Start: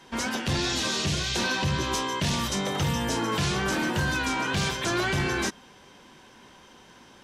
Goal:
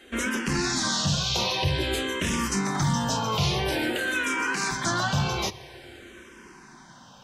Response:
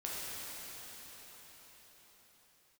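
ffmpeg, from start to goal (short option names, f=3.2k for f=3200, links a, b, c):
-filter_complex "[0:a]asettb=1/sr,asplit=3[a][b][c];[a]atrim=end=3.954[d];[b]atrim=start=3.95:end=4.71,asetpts=PTS-STARTPTS,afade=t=in:d=0.004:c=qsin,afade=t=out:st=0.756:d=0.004:c=qsin,highpass=340[e];[c]atrim=start=4.706[f];[d][e]acrossfade=d=0.004:c1=hsin:c2=qsin[g];[g][f]acrossfade=d=0.004:c1=qsin:c2=hsin,asplit=2[h][i];[1:a]atrim=start_sample=2205[j];[i][j]afir=irnorm=-1:irlink=0,volume=-19dB[k];[h][k]amix=inputs=2:normalize=0,asplit=2[l][m];[m]afreqshift=-0.5[n];[l][n]amix=inputs=2:normalize=1,volume=3.5dB"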